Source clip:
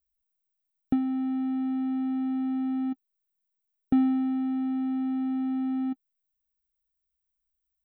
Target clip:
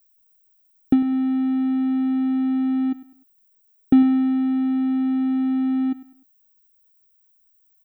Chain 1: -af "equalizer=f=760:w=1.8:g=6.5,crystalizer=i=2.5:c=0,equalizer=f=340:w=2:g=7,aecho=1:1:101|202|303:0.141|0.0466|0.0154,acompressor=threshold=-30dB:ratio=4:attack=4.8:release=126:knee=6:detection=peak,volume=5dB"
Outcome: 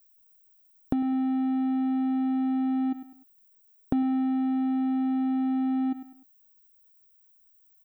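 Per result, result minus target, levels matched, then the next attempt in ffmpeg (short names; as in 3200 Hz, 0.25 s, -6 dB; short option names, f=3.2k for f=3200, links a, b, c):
compressor: peak gain reduction +13.5 dB; 1000 Hz band +7.5 dB
-af "equalizer=f=760:w=1.8:g=6.5,crystalizer=i=2.5:c=0,equalizer=f=340:w=2:g=7,aecho=1:1:101|202|303:0.141|0.0466|0.0154,volume=5dB"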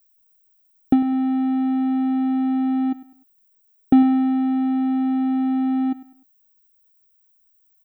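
1000 Hz band +7.0 dB
-af "equalizer=f=760:w=1.8:g=-2,crystalizer=i=2.5:c=0,equalizer=f=340:w=2:g=7,aecho=1:1:101|202|303:0.141|0.0466|0.0154,volume=5dB"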